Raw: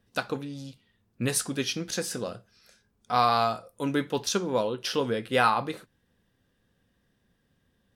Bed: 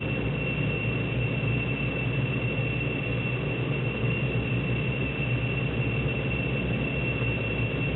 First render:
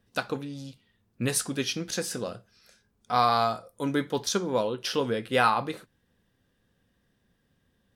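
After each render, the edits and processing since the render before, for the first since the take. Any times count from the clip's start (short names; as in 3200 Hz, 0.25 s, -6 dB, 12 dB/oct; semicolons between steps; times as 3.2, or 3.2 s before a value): 3.14–4.53 notch 2700 Hz, Q 7.5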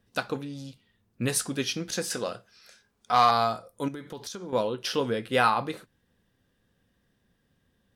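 2.1–3.31 overdrive pedal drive 10 dB, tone 7600 Hz, clips at -8 dBFS; 3.88–4.53 compressor 16:1, threshold -34 dBFS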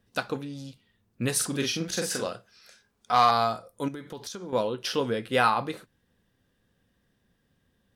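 1.36–2.27 doubler 43 ms -3.5 dB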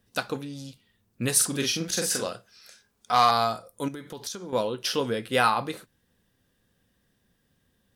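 high shelf 5100 Hz +7.5 dB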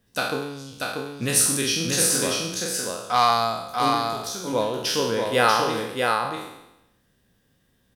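spectral trails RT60 0.89 s; echo 0.638 s -3.5 dB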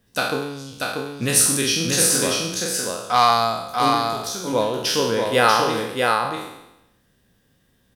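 gain +3 dB; limiter -2 dBFS, peak gain reduction 1.5 dB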